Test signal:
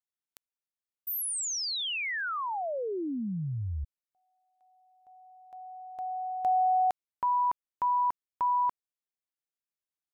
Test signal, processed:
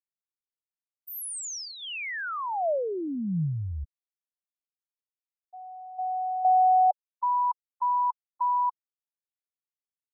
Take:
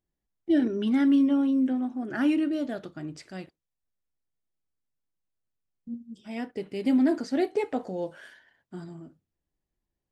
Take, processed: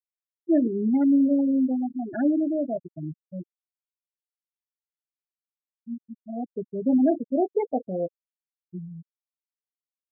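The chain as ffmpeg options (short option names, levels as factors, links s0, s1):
-af "equalizer=f=160:t=o:w=0.67:g=7,equalizer=f=630:t=o:w=0.67:g=8,equalizer=f=4000:t=o:w=0.67:g=-5,afftfilt=real='re*gte(hypot(re,im),0.126)':imag='im*gte(hypot(re,im),0.126)':win_size=1024:overlap=0.75"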